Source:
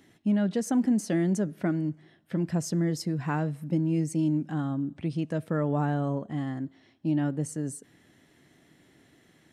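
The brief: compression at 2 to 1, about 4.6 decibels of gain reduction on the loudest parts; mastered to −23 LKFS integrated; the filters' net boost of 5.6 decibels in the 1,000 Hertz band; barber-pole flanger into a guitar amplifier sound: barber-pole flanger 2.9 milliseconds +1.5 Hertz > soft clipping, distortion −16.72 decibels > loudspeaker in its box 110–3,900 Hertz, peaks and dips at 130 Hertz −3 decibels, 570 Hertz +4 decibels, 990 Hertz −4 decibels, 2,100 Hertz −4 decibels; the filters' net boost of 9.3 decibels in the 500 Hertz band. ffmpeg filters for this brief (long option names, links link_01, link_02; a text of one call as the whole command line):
ffmpeg -i in.wav -filter_complex "[0:a]equalizer=frequency=500:width_type=o:gain=8.5,equalizer=frequency=1000:width_type=o:gain=5,acompressor=threshold=-26dB:ratio=2,asplit=2[link_01][link_02];[link_02]adelay=2.9,afreqshift=1.5[link_03];[link_01][link_03]amix=inputs=2:normalize=1,asoftclip=threshold=-24.5dB,highpass=110,equalizer=frequency=130:width_type=q:width=4:gain=-3,equalizer=frequency=570:width_type=q:width=4:gain=4,equalizer=frequency=990:width_type=q:width=4:gain=-4,equalizer=frequency=2100:width_type=q:width=4:gain=-4,lowpass=frequency=3900:width=0.5412,lowpass=frequency=3900:width=1.3066,volume=11dB" out.wav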